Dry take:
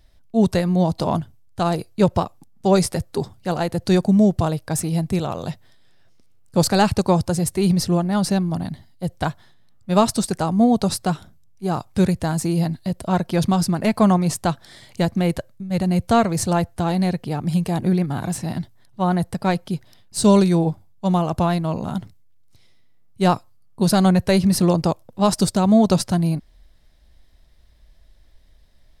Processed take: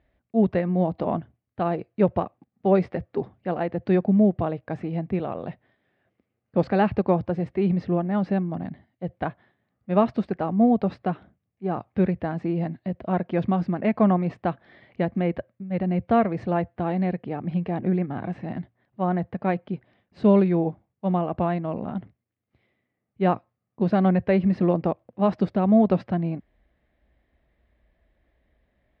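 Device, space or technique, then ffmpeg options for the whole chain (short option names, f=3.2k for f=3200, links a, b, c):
bass cabinet: -af "highpass=83,equalizer=f=93:t=q:w=4:g=-9,equalizer=f=150:t=q:w=4:g=-8,equalizer=f=950:t=q:w=4:g=-6,equalizer=f=1.4k:t=q:w=4:g=-5,lowpass=f=2.3k:w=0.5412,lowpass=f=2.3k:w=1.3066,volume=-2dB"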